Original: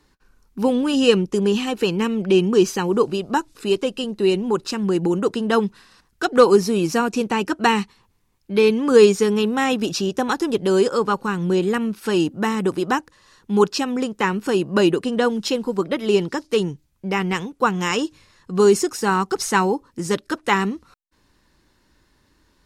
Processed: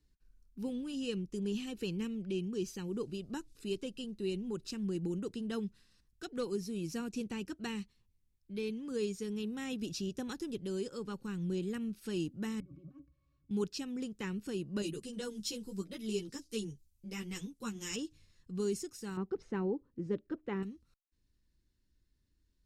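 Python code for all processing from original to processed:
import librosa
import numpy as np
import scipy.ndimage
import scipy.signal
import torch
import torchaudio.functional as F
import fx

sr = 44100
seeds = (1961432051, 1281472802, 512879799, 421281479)

y = fx.chain(x, sr, fx.cvsd(bps=64000),
    fx.over_compress(threshold_db=-28.0, ratio=-1.0),
    fx.octave_resonator(note='C#', decay_s=0.12), at=(12.6, 13.51))
y = fx.chain(y, sr, fx.bass_treble(bass_db=1, treble_db=11),
    fx.ensemble(), at=(14.82, 17.96))
y = fx.chain(y, sr, fx.lowpass(hz=2100.0, slope=12),
    fx.peak_eq(hz=430.0, db=11.0, octaves=2.6), at=(19.17, 20.63))
y = fx.low_shelf(y, sr, hz=250.0, db=-4.5)
y = fx.rider(y, sr, range_db=3, speed_s=0.5)
y = fx.tone_stack(y, sr, knobs='10-0-1')
y = F.gain(torch.from_numpy(y), 3.0).numpy()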